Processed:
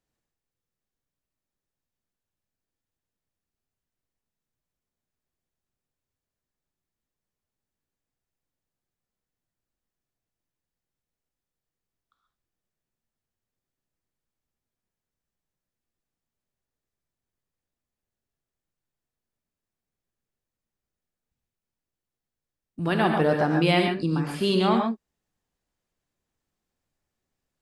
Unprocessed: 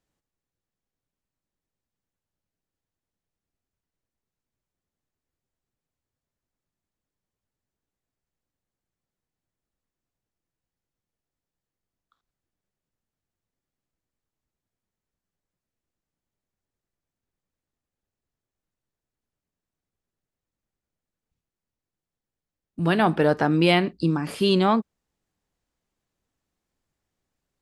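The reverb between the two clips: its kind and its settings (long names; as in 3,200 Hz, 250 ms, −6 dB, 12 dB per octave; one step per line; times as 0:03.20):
reverb whose tail is shaped and stops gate 160 ms rising, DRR 2 dB
level −3.5 dB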